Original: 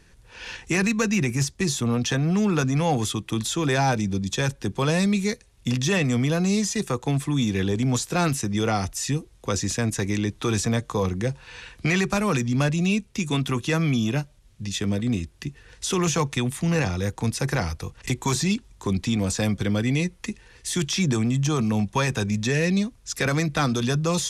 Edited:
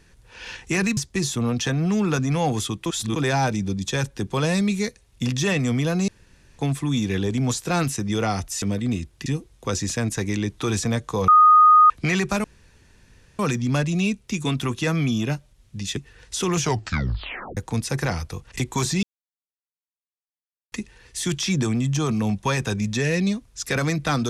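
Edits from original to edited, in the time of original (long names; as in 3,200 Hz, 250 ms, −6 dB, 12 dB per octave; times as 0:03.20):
0:00.97–0:01.42: remove
0:03.31–0:03.61: reverse
0:06.53–0:07.04: fill with room tone
0:11.09–0:11.71: beep over 1,240 Hz −9 dBFS
0:12.25: splice in room tone 0.95 s
0:14.83–0:15.47: move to 0:09.07
0:16.09: tape stop 0.98 s
0:18.53–0:20.22: silence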